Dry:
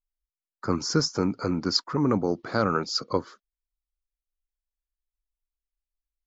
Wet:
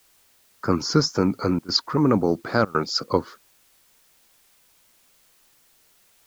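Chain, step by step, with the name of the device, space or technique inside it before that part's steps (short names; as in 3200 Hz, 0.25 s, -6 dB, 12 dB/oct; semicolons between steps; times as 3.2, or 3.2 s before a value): worn cassette (LPF 6000 Hz; wow and flutter; level dips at 1.59/2.65, 96 ms -22 dB; white noise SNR 34 dB); gain +4.5 dB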